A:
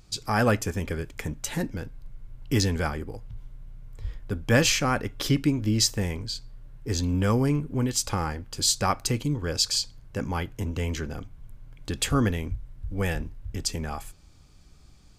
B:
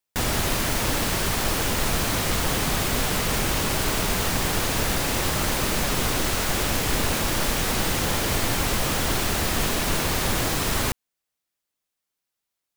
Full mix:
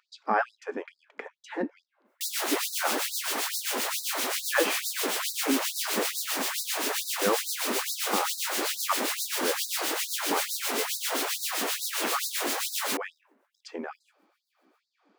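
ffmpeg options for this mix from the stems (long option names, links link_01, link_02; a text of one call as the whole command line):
ffmpeg -i stem1.wav -i stem2.wav -filter_complex "[0:a]lowpass=1600,volume=2.5dB[link_01];[1:a]acrossover=split=1900[link_02][link_03];[link_02]aeval=exprs='val(0)*(1-0.7/2+0.7/2*cos(2*PI*7.6*n/s))':channel_layout=same[link_04];[link_03]aeval=exprs='val(0)*(1-0.7/2-0.7/2*cos(2*PI*7.6*n/s))':channel_layout=same[link_05];[link_04][link_05]amix=inputs=2:normalize=0,adelay=2050,volume=0dB[link_06];[link_01][link_06]amix=inputs=2:normalize=0,afftfilt=real='re*gte(b*sr/1024,210*pow(3800/210,0.5+0.5*sin(2*PI*2.3*pts/sr)))':imag='im*gte(b*sr/1024,210*pow(3800/210,0.5+0.5*sin(2*PI*2.3*pts/sr)))':win_size=1024:overlap=0.75" out.wav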